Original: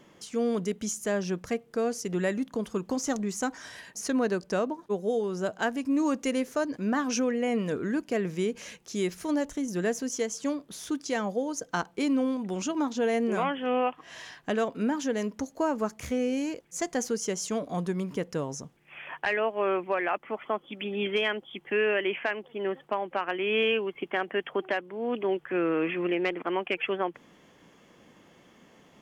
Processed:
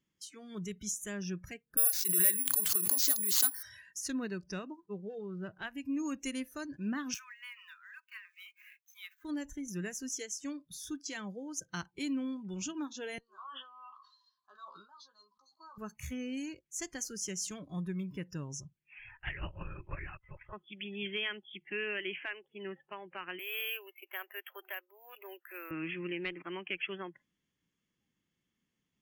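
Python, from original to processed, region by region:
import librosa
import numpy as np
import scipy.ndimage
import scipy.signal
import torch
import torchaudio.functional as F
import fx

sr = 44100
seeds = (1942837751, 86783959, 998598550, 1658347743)

y = fx.chain(x, sr, fx.highpass(hz=410.0, slope=12),
    fx.resample_bad(factor=4, down='none', up='zero_stuff'),
    fx.pre_swell(db_per_s=40.0), at=(1.77, 3.63))
y = fx.chain(y, sr, fx.median_filter(points=15),
    fx.lowpass(hz=4200.0, slope=12), at=(4.8, 5.65))
y = fx.chain(y, sr, fx.median_filter(points=9),
    fx.steep_highpass(hz=960.0, slope=96), at=(7.14, 9.25))
y = fx.chain(y, sr, fx.double_bandpass(hz=2200.0, octaves=1.9),
    fx.doubler(ms=15.0, db=-6),
    fx.sustainer(db_per_s=60.0), at=(13.18, 15.78))
y = fx.chain(y, sr, fx.low_shelf(hz=210.0, db=-10.5),
    fx.level_steps(step_db=9),
    fx.lpc_vocoder(seeds[0], excitation='whisper', order=10), at=(18.99, 20.53))
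y = fx.chain(y, sr, fx.highpass(hz=510.0, slope=24),
    fx.high_shelf(hz=2400.0, db=-5.0),
    fx.resample_bad(factor=3, down='none', up='hold'), at=(23.39, 25.71))
y = fx.noise_reduce_blind(y, sr, reduce_db=20)
y = fx.tone_stack(y, sr, knobs='6-0-2')
y = y * librosa.db_to_amplitude(12.0)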